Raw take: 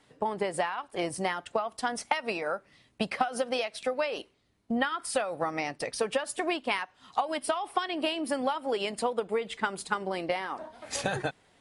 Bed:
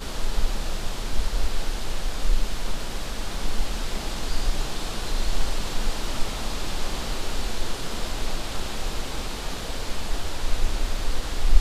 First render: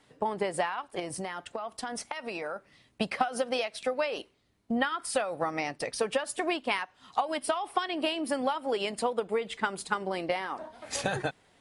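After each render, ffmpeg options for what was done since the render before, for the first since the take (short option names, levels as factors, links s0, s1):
-filter_complex "[0:a]asettb=1/sr,asplit=3[s0][s1][s2];[s0]atrim=end=0.994[s3];[s1]atrim=start=0.99:end=2.56,asetpts=PTS-STARTPTS,afade=t=in:d=0.004:c=qsin,afade=t=out:st=1.566:d=0.004:c=qsin,acompressor=threshold=0.0282:ratio=6:attack=3.2:release=140:knee=1:detection=peak[s4];[s2]atrim=start=2.556[s5];[s3][s4]acrossfade=d=0.004:c1=hsin:c2=qsin[s6];[s6][s5]acrossfade=d=0.004:c1=qsin:c2=hsin"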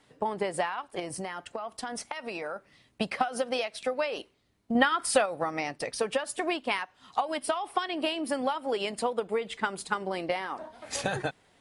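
-filter_complex "[0:a]asettb=1/sr,asplit=3[s0][s1][s2];[s0]atrim=end=1.064[s3];[s1]atrim=start=1.06:end=1.7,asetpts=PTS-STARTPTS,afade=t=in:d=0.004:c=qsin,afade=t=out:st=0.636:d=0.004:c=qsin,bandreject=f=3600:w=11[s4];[s2]atrim=start=1.696[s5];[s3][s4]acrossfade=d=0.004:c1=hsin:c2=qsin[s6];[s6][s5]acrossfade=d=0.004:c1=qsin:c2=hsin,asettb=1/sr,asplit=3[s7][s8][s9];[s7]atrim=end=4.754[s10];[s8]atrim=start=4.75:end=5.26,asetpts=PTS-STARTPTS,afade=t=in:d=0.004:c=qsin,afade=t=out:st=0.506:d=0.004:c=qsin,acontrast=35[s11];[s9]atrim=start=5.256[s12];[s10][s11]acrossfade=d=0.004:c1=hsin:c2=qsin[s13];[s13][s12]acrossfade=d=0.004:c1=qsin:c2=hsin"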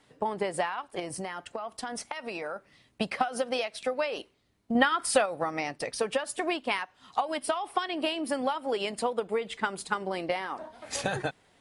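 -af anull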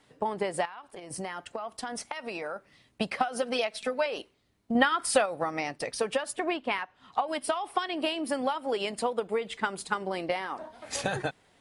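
-filter_complex "[0:a]asettb=1/sr,asplit=3[s0][s1][s2];[s0]atrim=end=0.654[s3];[s1]atrim=start=0.65:end=1.11,asetpts=PTS-STARTPTS,afade=t=in:d=0.004:c=qsin,afade=t=out:st=0.456:d=0.004:c=qsin,acompressor=threshold=0.01:ratio=5:attack=3.2:release=140:knee=1:detection=peak[s4];[s2]atrim=start=1.106[s5];[s3][s4]acrossfade=d=0.004:c1=hsin:c2=qsin[s6];[s6][s5]acrossfade=d=0.004:c1=qsin:c2=hsin,asettb=1/sr,asplit=3[s7][s8][s9];[s7]atrim=end=3.424[s10];[s8]atrim=start=3.42:end=4.06,asetpts=PTS-STARTPTS,afade=t=in:d=0.004:c=qsin,afade=t=out:st=0.636:d=0.004:c=qsin,aecho=1:1:4.6:0.62,atrim=end_sample=28224[s11];[s9]atrim=start=4.056[s12];[s10][s11]acrossfade=d=0.004:c1=hsin:c2=qsin[s13];[s13][s12]acrossfade=d=0.004:c1=qsin:c2=hsin,asettb=1/sr,asplit=3[s14][s15][s16];[s14]atrim=end=6.334[s17];[s15]atrim=start=6.33:end=7.28,asetpts=PTS-STARTPTS,afade=t=in:d=0.004:c=qsin,afade=t=out:st=0.946:d=0.004:c=qsin,bass=f=250:g=1,treble=f=4000:g=-10[s18];[s16]atrim=start=7.276[s19];[s17][s18]acrossfade=d=0.004:c1=hsin:c2=qsin[s20];[s20][s19]acrossfade=d=0.004:c1=qsin:c2=hsin"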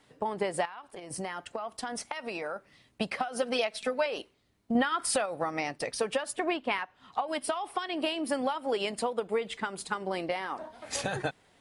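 -af "alimiter=limit=0.133:level=0:latency=1:release=189"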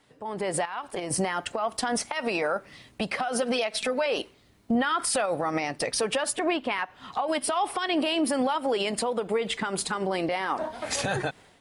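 -af "alimiter=level_in=1.78:limit=0.0631:level=0:latency=1:release=111,volume=0.562,dynaudnorm=f=150:g=5:m=3.76"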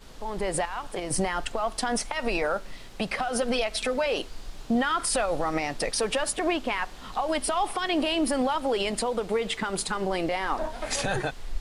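-filter_complex "[1:a]volume=0.158[s0];[0:a][s0]amix=inputs=2:normalize=0"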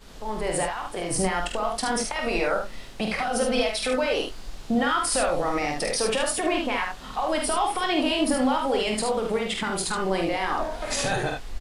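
-filter_complex "[0:a]asplit=2[s0][s1];[s1]adelay=23,volume=0.282[s2];[s0][s2]amix=inputs=2:normalize=0,aecho=1:1:47|74:0.531|0.562"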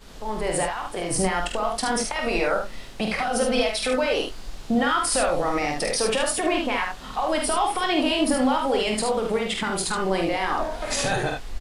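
-af "volume=1.19"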